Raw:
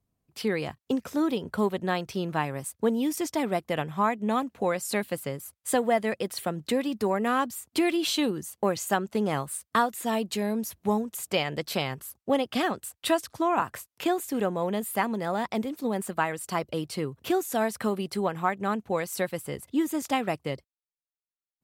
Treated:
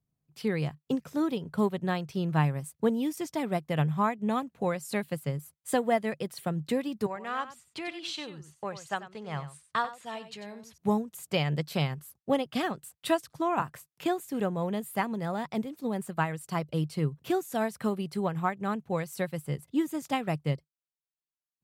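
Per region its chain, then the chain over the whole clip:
0:07.06–0:10.78: low-pass filter 5,600 Hz + parametric band 240 Hz −12.5 dB 1.9 octaves + single-tap delay 93 ms −10.5 dB
whole clip: parametric band 150 Hz +13.5 dB 0.47 octaves; expander for the loud parts 1.5 to 1, over −33 dBFS; level −1.5 dB

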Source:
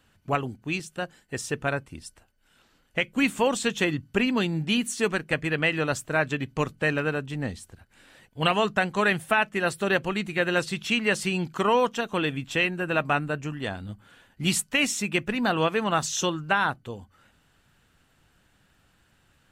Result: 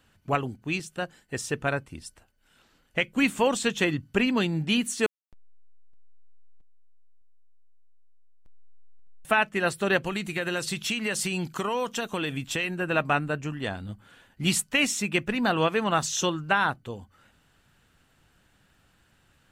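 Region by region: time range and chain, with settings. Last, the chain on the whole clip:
0:05.06–0:09.25: guitar amp tone stack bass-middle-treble 10-0-1 + slack as between gear wheels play −28 dBFS + single-tap delay 608 ms −17 dB
0:10.05–0:12.75: high-shelf EQ 5,300 Hz +9.5 dB + downward compressor 5 to 1, threshold −24 dBFS
whole clip: no processing

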